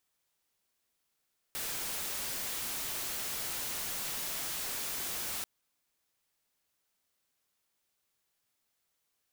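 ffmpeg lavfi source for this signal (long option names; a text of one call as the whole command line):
ffmpeg -f lavfi -i "anoisesrc=color=white:amplitude=0.0245:duration=3.89:sample_rate=44100:seed=1" out.wav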